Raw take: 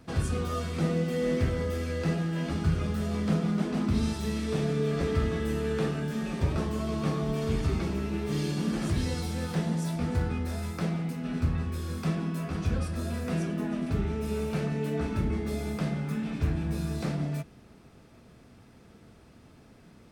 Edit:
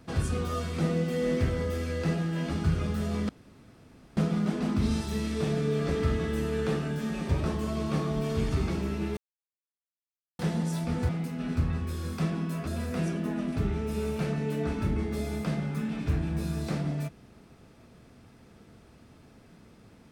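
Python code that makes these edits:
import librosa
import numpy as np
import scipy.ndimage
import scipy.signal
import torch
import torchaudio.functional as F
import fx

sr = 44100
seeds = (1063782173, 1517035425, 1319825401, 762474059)

y = fx.edit(x, sr, fx.insert_room_tone(at_s=3.29, length_s=0.88),
    fx.silence(start_s=8.29, length_s=1.22),
    fx.cut(start_s=10.21, length_s=0.73),
    fx.cut(start_s=12.52, length_s=0.49), tone=tone)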